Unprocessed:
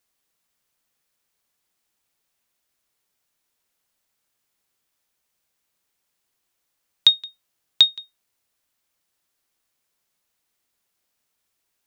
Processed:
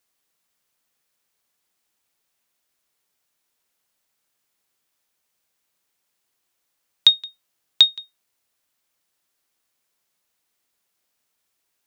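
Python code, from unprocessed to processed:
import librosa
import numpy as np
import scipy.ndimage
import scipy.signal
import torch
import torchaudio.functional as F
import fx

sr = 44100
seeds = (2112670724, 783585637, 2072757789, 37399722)

y = fx.low_shelf(x, sr, hz=120.0, db=-5.5)
y = y * 10.0 ** (1.0 / 20.0)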